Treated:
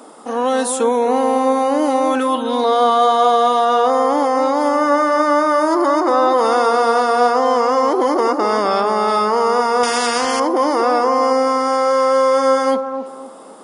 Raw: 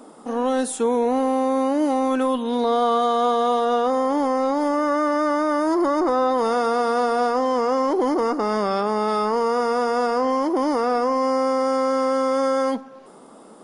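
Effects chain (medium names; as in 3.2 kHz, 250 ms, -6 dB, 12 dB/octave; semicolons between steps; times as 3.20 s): high-pass 510 Hz 6 dB/octave; bucket-brigade echo 259 ms, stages 2048, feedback 33%, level -7 dB; 9.83–10.40 s: spectrum-flattening compressor 2:1; trim +7.5 dB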